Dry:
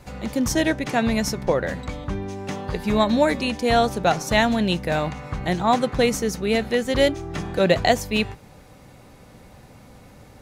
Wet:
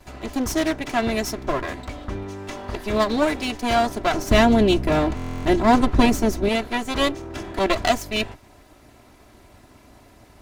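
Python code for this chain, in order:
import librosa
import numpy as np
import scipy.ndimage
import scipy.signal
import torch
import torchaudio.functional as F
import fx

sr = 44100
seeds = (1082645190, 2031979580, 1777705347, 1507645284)

y = fx.lower_of_two(x, sr, delay_ms=3.0)
y = fx.low_shelf(y, sr, hz=470.0, db=11.0, at=(4.14, 6.49))
y = fx.buffer_glitch(y, sr, at_s=(5.15,), block=1024, repeats=12)
y = y * 10.0 ** (-1.0 / 20.0)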